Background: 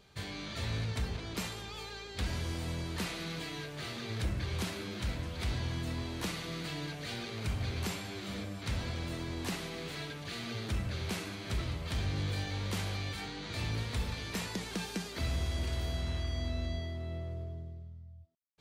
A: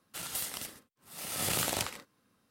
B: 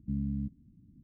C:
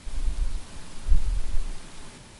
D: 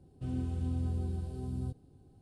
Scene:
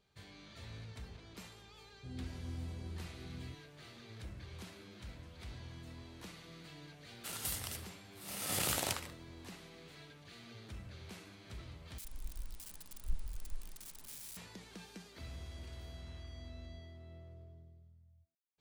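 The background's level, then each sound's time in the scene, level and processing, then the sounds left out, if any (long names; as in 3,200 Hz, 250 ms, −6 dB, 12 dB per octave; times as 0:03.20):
background −14 dB
0:01.82: mix in D −11 dB
0:07.10: mix in A −3.5 dB
0:11.98: overwrite with C −17 dB + spike at every zero crossing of −23.5 dBFS
not used: B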